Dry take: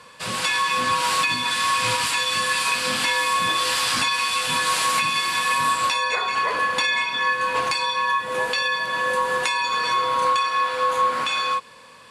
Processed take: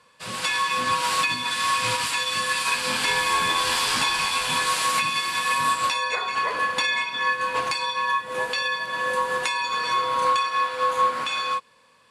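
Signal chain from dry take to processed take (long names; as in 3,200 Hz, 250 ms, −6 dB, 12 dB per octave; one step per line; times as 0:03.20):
0:02.45–0:04.66: echo with shifted repeats 225 ms, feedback 55%, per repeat −85 Hz, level −8 dB
expander for the loud parts 1.5 to 1, over −40 dBFS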